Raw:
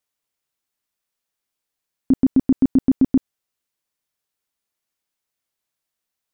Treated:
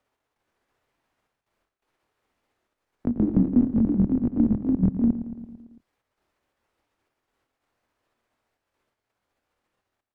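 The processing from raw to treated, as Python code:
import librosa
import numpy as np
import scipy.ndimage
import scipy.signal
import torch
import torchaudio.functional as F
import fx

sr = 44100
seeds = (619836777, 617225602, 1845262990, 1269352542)

p1 = fx.pitch_ramps(x, sr, semitones=-7.0, every_ms=438)
p2 = fx.lowpass(p1, sr, hz=1100.0, slope=6)
p3 = fx.peak_eq(p2, sr, hz=160.0, db=-12.0, octaves=0.33)
p4 = fx.over_compress(p3, sr, threshold_db=-21.0, ratio=-0.5)
p5 = p3 + (p4 * librosa.db_to_amplitude(2.0))
p6 = fx.step_gate(p5, sr, bpm=132, pattern='x.xxxxx.', floor_db=-24.0, edge_ms=4.5)
p7 = fx.stretch_grains(p6, sr, factor=1.6, grain_ms=140.0)
p8 = p7 + fx.echo_feedback(p7, sr, ms=112, feedback_pct=54, wet_db=-12.5, dry=0)
p9 = fx.echo_pitch(p8, sr, ms=200, semitones=2, count=2, db_per_echo=-3.0)
p10 = fx.band_squash(p9, sr, depth_pct=40)
y = p10 * librosa.db_to_amplitude(-4.0)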